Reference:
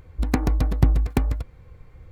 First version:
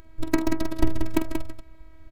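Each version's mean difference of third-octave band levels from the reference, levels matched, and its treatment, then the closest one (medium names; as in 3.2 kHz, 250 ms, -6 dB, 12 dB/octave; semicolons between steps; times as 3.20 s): 6.5 dB: on a send: loudspeakers at several distances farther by 16 m -10 dB, 63 m -6 dB; on the sum: robot voice 322 Hz; trim +2 dB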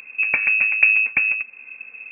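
16.5 dB: frequency inversion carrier 2.6 kHz; in parallel at -1 dB: compression, threshold -32 dBFS, peak gain reduction 21 dB; on the sum: trim -1 dB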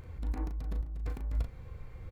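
11.0 dB: compressor with a negative ratio -29 dBFS, ratio -1; doubling 37 ms -6 dB; trim -8 dB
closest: first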